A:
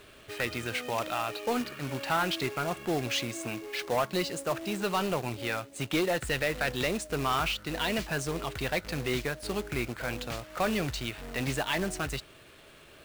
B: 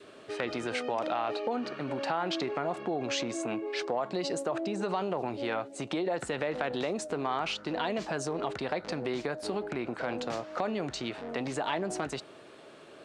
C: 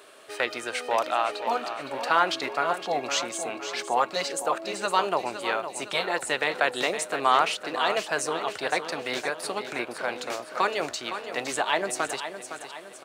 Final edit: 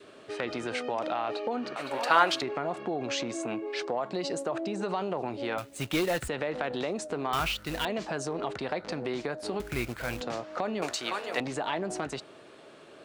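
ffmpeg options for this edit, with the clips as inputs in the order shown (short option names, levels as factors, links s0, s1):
-filter_complex "[2:a]asplit=2[s0][s1];[0:a]asplit=3[s2][s3][s4];[1:a]asplit=6[s5][s6][s7][s8][s9][s10];[s5]atrim=end=1.762[s11];[s0]atrim=start=1.758:end=2.422[s12];[s6]atrim=start=2.418:end=5.582[s13];[s2]atrim=start=5.578:end=6.282[s14];[s7]atrim=start=6.278:end=7.332[s15];[s3]atrim=start=7.328:end=7.852[s16];[s8]atrim=start=7.848:end=9.602[s17];[s4]atrim=start=9.598:end=10.212[s18];[s9]atrim=start=10.208:end=10.822[s19];[s1]atrim=start=10.818:end=11.402[s20];[s10]atrim=start=11.398[s21];[s11][s12]acrossfade=d=0.004:c1=hsin:c2=hsin[s22];[s22][s13]acrossfade=d=0.004:c1=hsin:c2=hsin[s23];[s23][s14]acrossfade=d=0.004:c1=hsin:c2=hsin[s24];[s24][s15]acrossfade=d=0.004:c1=hsin:c2=hsin[s25];[s25][s16]acrossfade=d=0.004:c1=hsin:c2=hsin[s26];[s26][s17]acrossfade=d=0.004:c1=hsin:c2=hsin[s27];[s27][s18]acrossfade=d=0.004:c1=hsin:c2=hsin[s28];[s28][s19]acrossfade=d=0.004:c1=hsin:c2=hsin[s29];[s29][s20]acrossfade=d=0.004:c1=hsin:c2=hsin[s30];[s30][s21]acrossfade=d=0.004:c1=hsin:c2=hsin"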